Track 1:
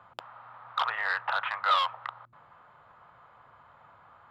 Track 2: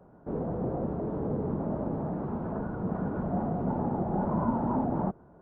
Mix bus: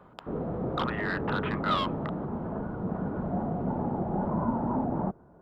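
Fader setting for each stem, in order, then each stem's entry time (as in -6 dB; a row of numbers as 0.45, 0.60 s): -4.0, -0.5 dB; 0.00, 0.00 s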